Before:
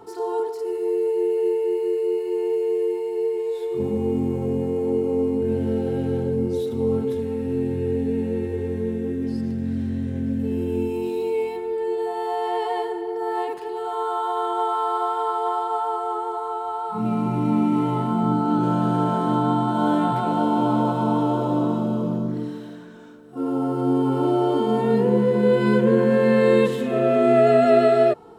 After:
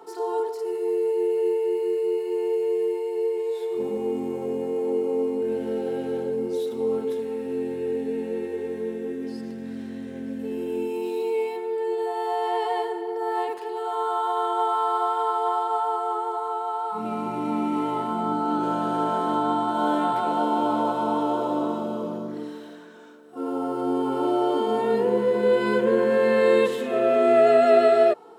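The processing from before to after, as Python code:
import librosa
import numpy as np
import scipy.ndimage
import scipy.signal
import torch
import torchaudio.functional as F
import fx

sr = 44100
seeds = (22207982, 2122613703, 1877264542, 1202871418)

y = scipy.signal.sosfilt(scipy.signal.butter(2, 350.0, 'highpass', fs=sr, output='sos'), x)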